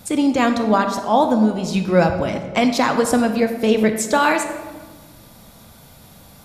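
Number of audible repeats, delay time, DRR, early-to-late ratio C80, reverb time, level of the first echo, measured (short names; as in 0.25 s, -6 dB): none, none, 6.5 dB, 10.0 dB, 1.4 s, none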